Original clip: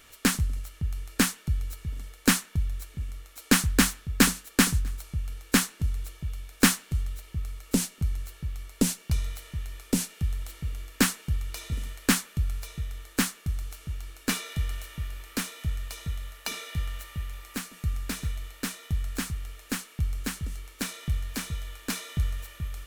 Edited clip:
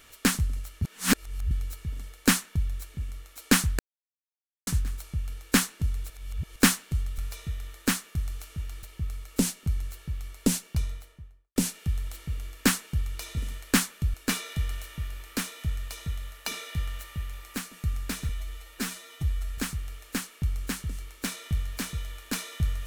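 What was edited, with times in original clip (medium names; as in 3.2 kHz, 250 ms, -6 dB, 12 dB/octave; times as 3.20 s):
0.82–1.51 s: reverse
3.79–4.67 s: mute
6.10–6.56 s: reverse
8.90–9.91 s: studio fade out
12.49–14.14 s: move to 7.18 s
18.29–19.15 s: stretch 1.5×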